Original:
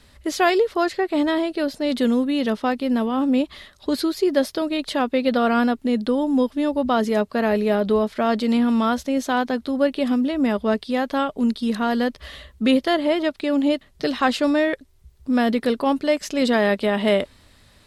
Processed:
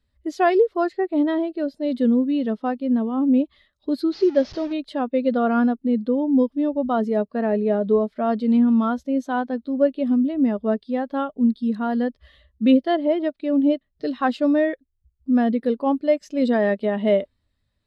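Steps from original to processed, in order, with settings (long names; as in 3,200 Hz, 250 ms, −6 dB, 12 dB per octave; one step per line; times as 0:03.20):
0:04.12–0:04.73: linear delta modulator 32 kbit/s, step −22.5 dBFS
every bin expanded away from the loudest bin 1.5 to 1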